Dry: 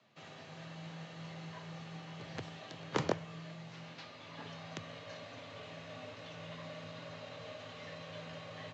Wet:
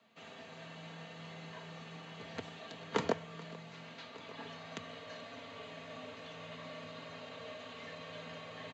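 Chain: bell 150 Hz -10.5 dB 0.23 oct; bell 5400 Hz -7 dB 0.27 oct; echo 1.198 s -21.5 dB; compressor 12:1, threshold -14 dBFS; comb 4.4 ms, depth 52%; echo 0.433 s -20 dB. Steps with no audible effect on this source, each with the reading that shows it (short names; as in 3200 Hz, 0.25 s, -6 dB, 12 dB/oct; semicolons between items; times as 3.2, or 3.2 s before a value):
compressor, threshold -14 dBFS: input peak -17.0 dBFS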